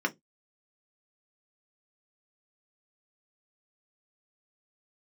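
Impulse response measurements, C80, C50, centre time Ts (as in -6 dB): 36.5 dB, 25.0 dB, 5 ms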